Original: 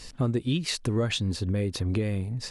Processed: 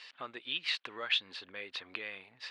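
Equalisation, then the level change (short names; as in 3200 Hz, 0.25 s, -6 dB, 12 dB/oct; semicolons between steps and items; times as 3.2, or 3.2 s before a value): HPF 1300 Hz 12 dB/oct; air absorption 97 m; resonant high shelf 4700 Hz -12 dB, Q 1.5; +1.5 dB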